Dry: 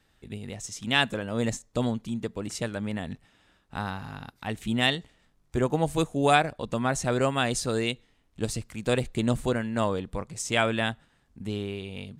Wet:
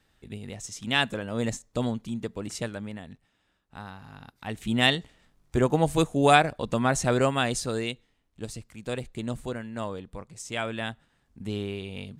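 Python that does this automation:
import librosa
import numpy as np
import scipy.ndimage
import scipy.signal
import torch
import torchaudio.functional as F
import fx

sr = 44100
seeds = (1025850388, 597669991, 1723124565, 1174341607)

y = fx.gain(x, sr, db=fx.line((2.64, -1.0), (3.07, -9.0), (3.97, -9.0), (4.85, 2.5), (7.11, 2.5), (8.41, -7.0), (10.59, -7.0), (11.59, 0.5)))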